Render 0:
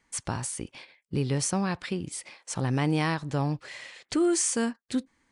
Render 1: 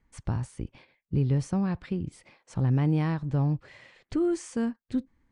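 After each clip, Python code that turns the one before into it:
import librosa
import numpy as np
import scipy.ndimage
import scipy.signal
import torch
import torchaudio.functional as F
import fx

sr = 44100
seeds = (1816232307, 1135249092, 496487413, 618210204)

y = fx.riaa(x, sr, side='playback')
y = y * 10.0 ** (-6.5 / 20.0)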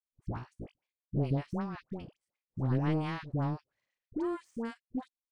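y = fx.power_curve(x, sr, exponent=2.0)
y = fx.dispersion(y, sr, late='highs', ms=87.0, hz=910.0)
y = y * 10.0 ** (-1.5 / 20.0)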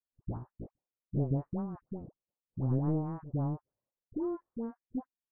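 y = scipy.signal.sosfilt(scipy.signal.bessel(6, 700.0, 'lowpass', norm='mag', fs=sr, output='sos'), x)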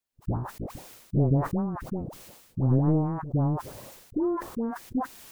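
y = fx.sustainer(x, sr, db_per_s=56.0)
y = y * 10.0 ** (7.5 / 20.0)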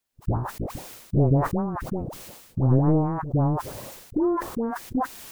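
y = fx.dynamic_eq(x, sr, hz=200.0, q=1.0, threshold_db=-37.0, ratio=4.0, max_db=-5)
y = y * 10.0 ** (6.0 / 20.0)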